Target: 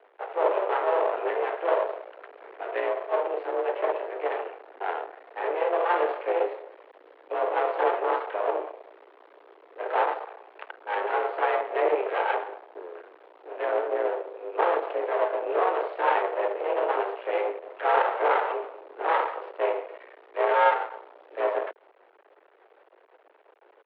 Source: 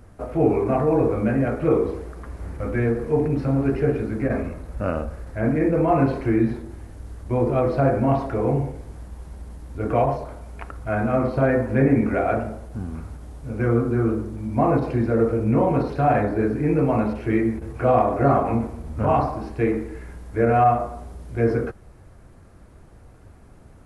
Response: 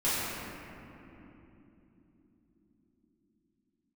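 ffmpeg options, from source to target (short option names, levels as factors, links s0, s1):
-filter_complex "[0:a]asplit=3[s0][s1][s2];[s1]asetrate=22050,aresample=44100,atempo=2,volume=0.447[s3];[s2]asetrate=29433,aresample=44100,atempo=1.49831,volume=0.158[s4];[s0][s3][s4]amix=inputs=3:normalize=0,aeval=exprs='max(val(0),0)':c=same,highpass=f=230:t=q:w=0.5412,highpass=f=230:t=q:w=1.307,lowpass=f=3300:t=q:w=0.5176,lowpass=f=3300:t=q:w=0.7071,lowpass=f=3300:t=q:w=1.932,afreqshift=180"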